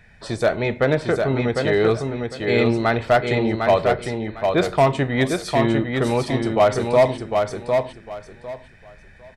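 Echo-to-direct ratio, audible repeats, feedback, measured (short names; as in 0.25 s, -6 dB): -4.5 dB, 3, 22%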